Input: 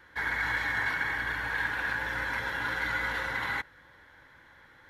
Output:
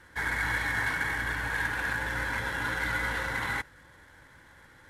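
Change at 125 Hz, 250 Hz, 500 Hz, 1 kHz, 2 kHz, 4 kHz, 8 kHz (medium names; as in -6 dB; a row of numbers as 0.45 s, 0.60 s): +5.5 dB, +4.0 dB, +2.0 dB, +0.5 dB, 0.0 dB, +0.5 dB, +8.0 dB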